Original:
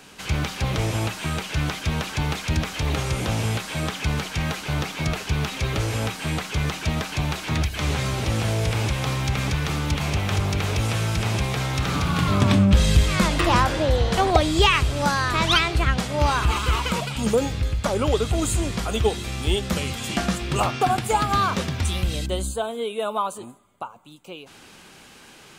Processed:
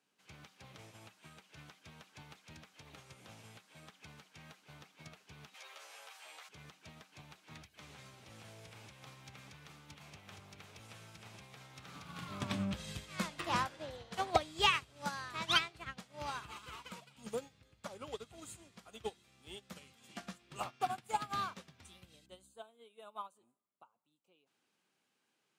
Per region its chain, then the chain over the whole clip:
0:05.54–0:06.49: high-pass filter 610 Hz 24 dB per octave + double-tracking delay 13 ms −2 dB + envelope flattener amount 70%
whole clip: high-pass filter 160 Hz 12 dB per octave; dynamic equaliser 350 Hz, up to −5 dB, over −35 dBFS, Q 0.84; expander for the loud parts 2.5 to 1, over −33 dBFS; level −8 dB

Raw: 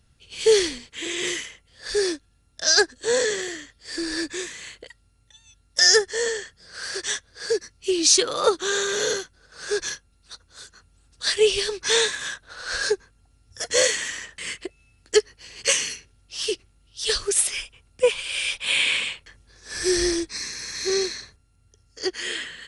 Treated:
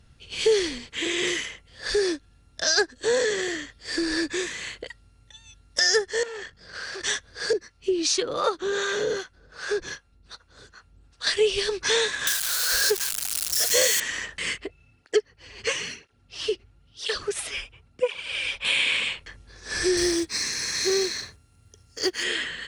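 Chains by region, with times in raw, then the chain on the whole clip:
0:06.23–0:07.01: downward compressor 5 to 1, threshold −33 dBFS + high-frequency loss of the air 59 metres + saturating transformer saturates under 2,400 Hz
0:07.53–0:11.27: high-shelf EQ 4,900 Hz −7.5 dB + two-band tremolo in antiphase 2.6 Hz, crossover 580 Hz
0:12.27–0:14.00: spike at every zero crossing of −15.5 dBFS + high-shelf EQ 4,000 Hz +6.5 dB
0:14.58–0:18.65: high-shelf EQ 4,200 Hz −10 dB + through-zero flanger with one copy inverted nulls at 1 Hz, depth 6.8 ms
0:19.97–0:22.24: high-pass filter 57 Hz 24 dB per octave + high-shelf EQ 7,600 Hz +11 dB + floating-point word with a short mantissa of 2 bits
whole clip: high-shelf EQ 7,300 Hz −10.5 dB; downward compressor 2 to 1, threshold −31 dBFS; level +6 dB

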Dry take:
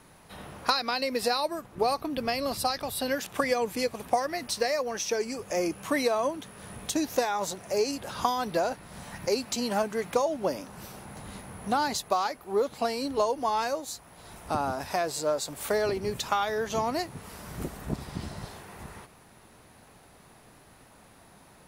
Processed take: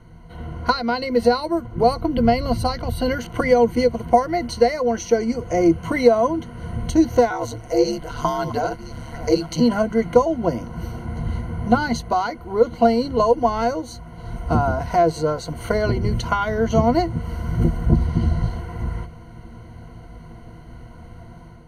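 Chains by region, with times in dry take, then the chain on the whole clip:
0:07.30–0:09.60: delay that plays each chunk backwards 541 ms, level −14 dB + spectral tilt +1.5 dB per octave + ring modulation 71 Hz
whole clip: EQ curve with evenly spaced ripples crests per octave 1.9, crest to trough 16 dB; automatic gain control gain up to 5.5 dB; RIAA equalisation playback; level −1 dB

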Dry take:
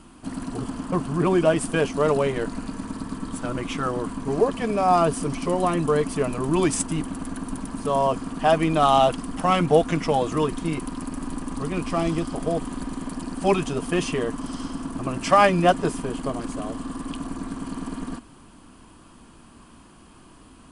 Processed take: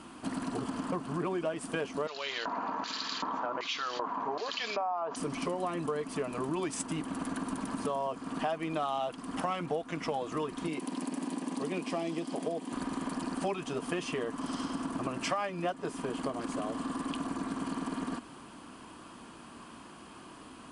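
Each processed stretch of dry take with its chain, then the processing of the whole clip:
0:02.07–0:05.16: auto-filter band-pass square 1.3 Hz 890–4,200 Hz + linear-phase brick-wall low-pass 7,300 Hz + envelope flattener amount 50%
0:10.67–0:12.73: high-pass filter 170 Hz 24 dB per octave + parametric band 1,300 Hz −10 dB 0.65 octaves
whole clip: high-pass filter 310 Hz 6 dB per octave; high-shelf EQ 7,900 Hz −9.5 dB; downward compressor 6 to 1, threshold −35 dBFS; level +3.5 dB

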